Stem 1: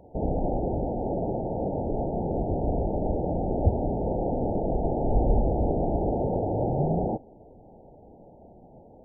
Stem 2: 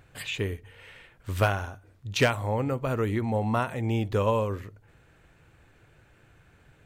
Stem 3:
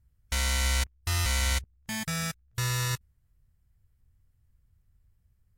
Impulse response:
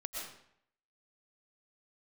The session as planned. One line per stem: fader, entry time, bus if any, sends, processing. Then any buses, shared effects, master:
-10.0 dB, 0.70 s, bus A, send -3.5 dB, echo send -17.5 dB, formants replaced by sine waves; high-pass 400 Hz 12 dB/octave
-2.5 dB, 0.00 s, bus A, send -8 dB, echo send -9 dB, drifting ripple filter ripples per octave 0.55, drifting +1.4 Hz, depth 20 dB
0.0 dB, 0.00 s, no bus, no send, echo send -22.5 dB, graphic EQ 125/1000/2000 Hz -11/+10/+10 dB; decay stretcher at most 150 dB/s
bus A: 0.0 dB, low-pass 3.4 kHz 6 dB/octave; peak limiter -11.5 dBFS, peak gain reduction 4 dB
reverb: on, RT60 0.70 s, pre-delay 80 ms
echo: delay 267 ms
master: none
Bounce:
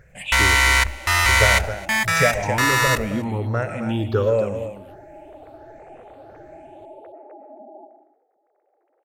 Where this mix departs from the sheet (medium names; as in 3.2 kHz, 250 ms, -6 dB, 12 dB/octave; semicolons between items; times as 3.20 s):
stem 1 -10.0 dB -> -20.0 dB; stem 3 0.0 dB -> +6.5 dB